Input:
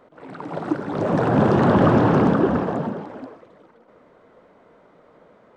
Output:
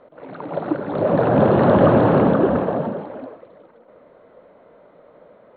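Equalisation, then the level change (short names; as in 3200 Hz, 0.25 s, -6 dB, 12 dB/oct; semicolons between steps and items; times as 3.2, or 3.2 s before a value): brick-wall FIR low-pass 4400 Hz; air absorption 60 m; bell 570 Hz +7.5 dB 0.56 oct; 0.0 dB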